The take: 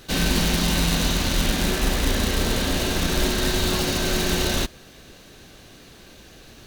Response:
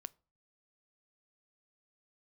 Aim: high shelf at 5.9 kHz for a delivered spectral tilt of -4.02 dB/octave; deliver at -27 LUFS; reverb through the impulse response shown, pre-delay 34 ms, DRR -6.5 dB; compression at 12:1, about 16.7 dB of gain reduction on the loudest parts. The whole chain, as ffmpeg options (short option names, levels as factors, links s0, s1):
-filter_complex "[0:a]highshelf=f=5900:g=-4.5,acompressor=threshold=0.02:ratio=12,asplit=2[s0][s1];[1:a]atrim=start_sample=2205,adelay=34[s2];[s1][s2]afir=irnorm=-1:irlink=0,volume=3.76[s3];[s0][s3]amix=inputs=2:normalize=0,volume=1.78"